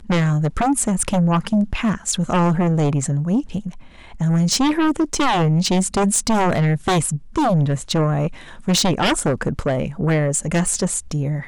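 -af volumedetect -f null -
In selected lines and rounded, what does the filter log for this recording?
mean_volume: -19.0 dB
max_volume: -10.4 dB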